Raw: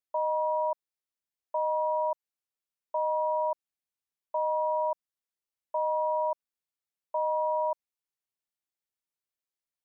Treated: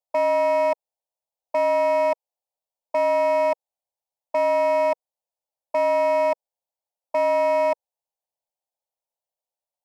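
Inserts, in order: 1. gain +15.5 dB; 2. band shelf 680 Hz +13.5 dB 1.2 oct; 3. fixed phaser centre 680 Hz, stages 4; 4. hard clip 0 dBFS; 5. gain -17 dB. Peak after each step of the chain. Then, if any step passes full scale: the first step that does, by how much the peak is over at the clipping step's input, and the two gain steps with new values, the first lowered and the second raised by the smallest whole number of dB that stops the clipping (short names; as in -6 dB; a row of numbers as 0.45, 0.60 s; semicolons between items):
-6.5, +6.0, +5.0, 0.0, -17.0 dBFS; step 2, 5.0 dB; step 1 +10.5 dB, step 5 -12 dB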